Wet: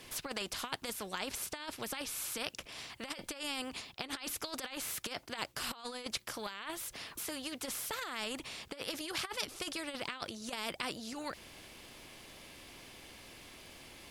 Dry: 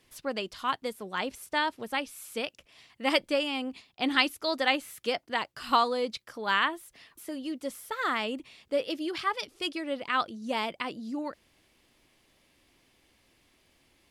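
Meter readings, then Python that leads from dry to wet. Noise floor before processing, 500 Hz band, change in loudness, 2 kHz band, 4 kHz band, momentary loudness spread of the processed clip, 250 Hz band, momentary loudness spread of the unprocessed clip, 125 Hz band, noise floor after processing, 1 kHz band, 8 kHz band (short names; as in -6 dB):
-68 dBFS, -12.0 dB, -9.0 dB, -10.5 dB, -6.0 dB, 14 LU, -10.5 dB, 11 LU, n/a, -59 dBFS, -13.5 dB, +7.0 dB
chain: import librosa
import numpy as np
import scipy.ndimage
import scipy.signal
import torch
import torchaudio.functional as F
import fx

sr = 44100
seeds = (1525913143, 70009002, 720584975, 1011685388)

y = fx.over_compress(x, sr, threshold_db=-33.0, ratio=-0.5)
y = fx.notch(y, sr, hz=1900.0, q=22.0)
y = fx.spectral_comp(y, sr, ratio=2.0)
y = F.gain(torch.from_numpy(y), -2.0).numpy()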